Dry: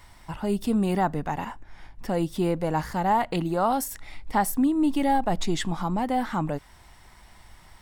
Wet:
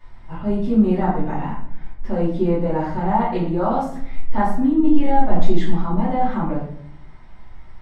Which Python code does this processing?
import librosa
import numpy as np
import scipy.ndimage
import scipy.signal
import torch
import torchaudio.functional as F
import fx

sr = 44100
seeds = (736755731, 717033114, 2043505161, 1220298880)

y = fx.spacing_loss(x, sr, db_at_10k=25)
y = fx.room_shoebox(y, sr, seeds[0], volume_m3=97.0, walls='mixed', distance_m=2.6)
y = F.gain(torch.from_numpy(y), -6.0).numpy()